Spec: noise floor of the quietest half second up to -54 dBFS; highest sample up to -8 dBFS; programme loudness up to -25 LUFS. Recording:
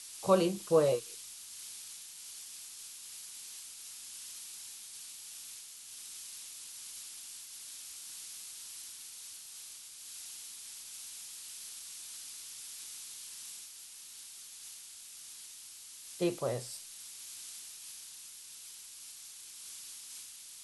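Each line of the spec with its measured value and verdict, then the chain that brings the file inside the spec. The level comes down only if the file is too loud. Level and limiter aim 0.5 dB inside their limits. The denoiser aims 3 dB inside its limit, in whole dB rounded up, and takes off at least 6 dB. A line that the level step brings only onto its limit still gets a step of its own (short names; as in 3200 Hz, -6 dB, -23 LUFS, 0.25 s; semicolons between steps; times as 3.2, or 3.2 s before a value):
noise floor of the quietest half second -50 dBFS: fail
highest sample -14.5 dBFS: OK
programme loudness -40.0 LUFS: OK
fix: denoiser 7 dB, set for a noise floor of -50 dBFS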